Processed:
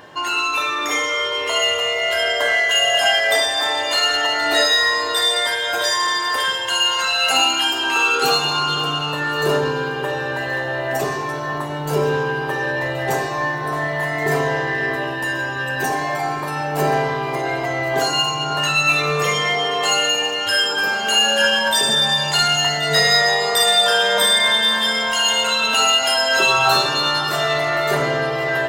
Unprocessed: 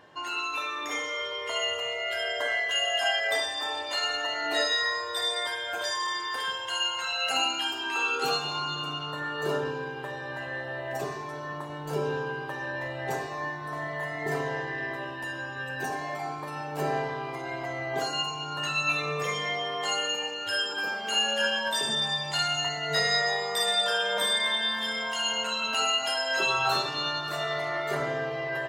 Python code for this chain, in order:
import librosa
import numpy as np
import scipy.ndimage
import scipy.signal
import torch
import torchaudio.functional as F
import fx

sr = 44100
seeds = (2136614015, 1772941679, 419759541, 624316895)

p1 = fx.high_shelf(x, sr, hz=9200.0, db=7.0)
p2 = 10.0 ** (-31.5 / 20.0) * np.tanh(p1 / 10.0 ** (-31.5 / 20.0))
p3 = p1 + (p2 * librosa.db_to_amplitude(-4.0))
p4 = fx.echo_alternate(p3, sr, ms=538, hz=1700.0, feedback_pct=56, wet_db=-12)
y = p4 * librosa.db_to_amplitude(8.0)